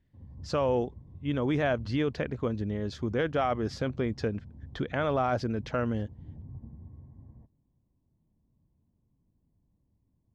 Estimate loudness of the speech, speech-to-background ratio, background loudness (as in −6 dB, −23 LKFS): −30.5 LKFS, 18.0 dB, −48.5 LKFS